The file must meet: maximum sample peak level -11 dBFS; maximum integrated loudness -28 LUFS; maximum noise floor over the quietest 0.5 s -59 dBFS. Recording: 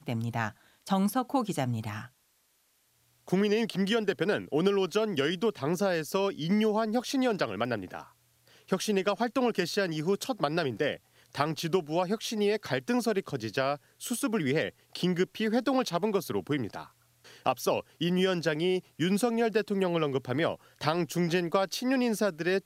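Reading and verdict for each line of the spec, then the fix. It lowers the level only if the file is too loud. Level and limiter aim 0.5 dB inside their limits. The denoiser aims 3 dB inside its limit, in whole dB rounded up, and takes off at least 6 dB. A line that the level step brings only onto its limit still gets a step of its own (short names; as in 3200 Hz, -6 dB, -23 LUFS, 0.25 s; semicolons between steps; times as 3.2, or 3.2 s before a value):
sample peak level -9.5 dBFS: fail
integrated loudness -29.5 LUFS: OK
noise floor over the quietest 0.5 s -70 dBFS: OK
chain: limiter -11.5 dBFS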